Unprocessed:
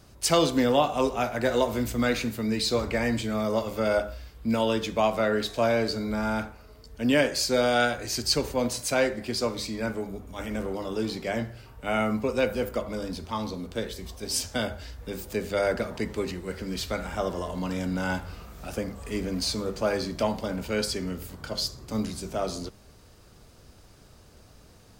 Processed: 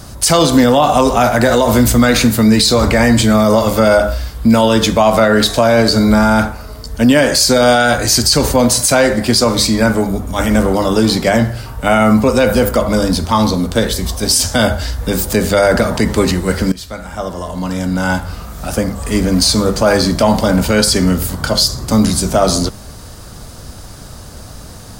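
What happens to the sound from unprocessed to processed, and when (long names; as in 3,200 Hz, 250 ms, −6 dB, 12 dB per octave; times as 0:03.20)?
0:16.72–0:20.32: fade in, from −19.5 dB
whole clip: graphic EQ with 15 bands 400 Hz −6 dB, 2,500 Hz −6 dB, 10,000 Hz +4 dB; boost into a limiter +22 dB; level −1 dB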